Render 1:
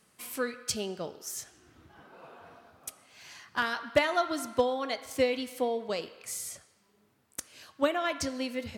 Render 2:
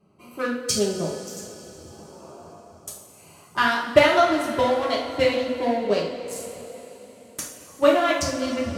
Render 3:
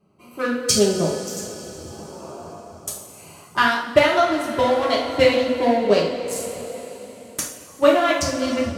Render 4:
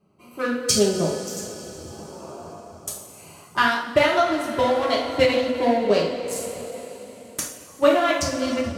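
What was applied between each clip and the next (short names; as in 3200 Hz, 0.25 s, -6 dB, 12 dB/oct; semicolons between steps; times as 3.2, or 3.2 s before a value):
Wiener smoothing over 25 samples; two-slope reverb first 0.48 s, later 4.2 s, from -16 dB, DRR -5 dB; gain +4.5 dB
AGC gain up to 8 dB; gain -1 dB
ending taper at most 140 dB/s; gain -1.5 dB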